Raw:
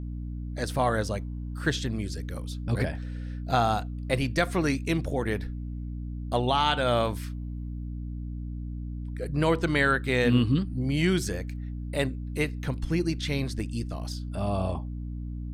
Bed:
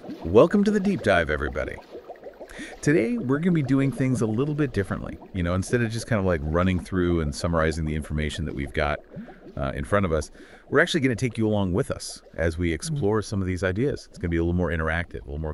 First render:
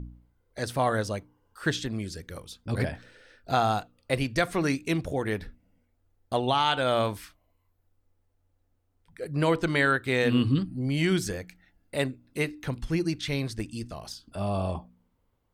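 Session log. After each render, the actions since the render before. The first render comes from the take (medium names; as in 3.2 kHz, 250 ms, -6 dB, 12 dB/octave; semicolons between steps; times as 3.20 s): de-hum 60 Hz, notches 5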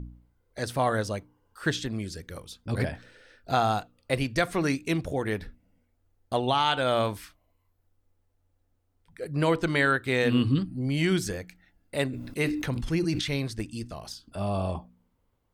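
12.07–13.37 s: decay stretcher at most 43 dB/s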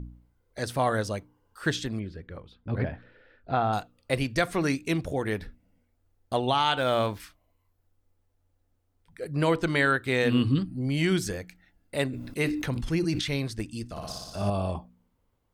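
1.99–3.73 s: distance through air 410 m; 6.78–7.20 s: median filter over 5 samples; 13.90–14.50 s: flutter echo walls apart 10.1 m, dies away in 1.4 s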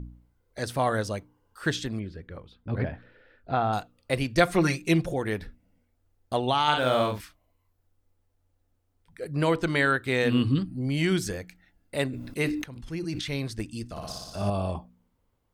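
4.37–5.14 s: comb 5.7 ms, depth 95%; 6.63–7.21 s: doubling 47 ms -4 dB; 12.64–13.55 s: fade in, from -16.5 dB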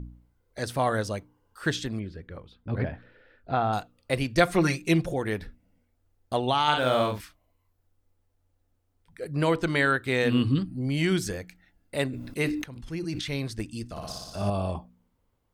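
no audible change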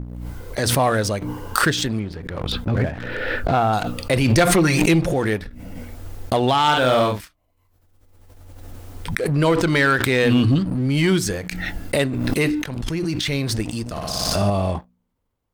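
waveshaping leveller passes 2; swell ahead of each attack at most 26 dB/s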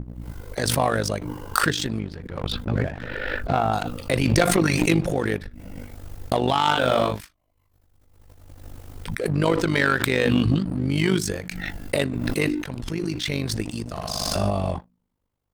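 AM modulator 50 Hz, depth 65%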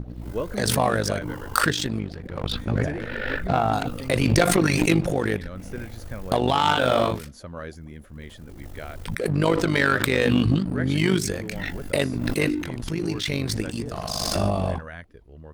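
add bed -13.5 dB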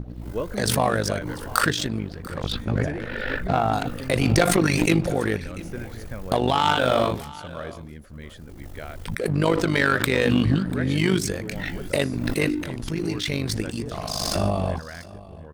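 delay 692 ms -19.5 dB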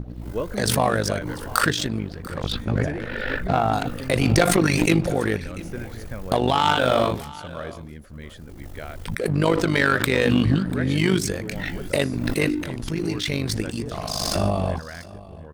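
trim +1 dB; peak limiter -2 dBFS, peak gain reduction 1 dB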